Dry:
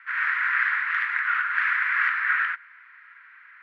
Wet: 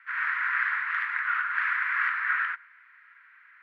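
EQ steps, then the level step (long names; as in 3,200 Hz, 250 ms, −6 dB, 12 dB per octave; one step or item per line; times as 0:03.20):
dynamic equaliser 1,000 Hz, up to +5 dB, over −40 dBFS, Q 1.3
−5.5 dB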